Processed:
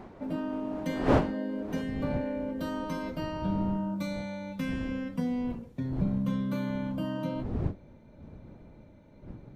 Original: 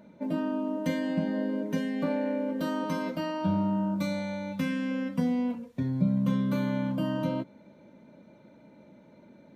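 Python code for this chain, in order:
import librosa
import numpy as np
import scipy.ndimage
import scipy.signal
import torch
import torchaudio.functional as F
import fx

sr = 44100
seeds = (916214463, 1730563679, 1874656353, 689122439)

y = fx.dmg_wind(x, sr, seeds[0], corner_hz=fx.steps((0.0, 580.0), (1.81, 200.0)), level_db=-34.0)
y = y * 10.0 ** (-3.5 / 20.0)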